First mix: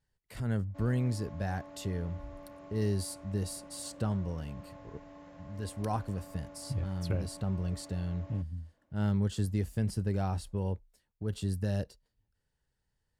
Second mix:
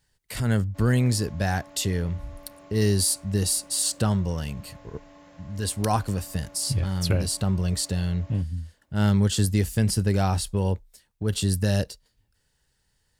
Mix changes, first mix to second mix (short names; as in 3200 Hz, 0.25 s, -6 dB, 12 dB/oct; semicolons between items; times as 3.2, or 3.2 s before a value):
speech +8.5 dB; master: add high shelf 2100 Hz +10 dB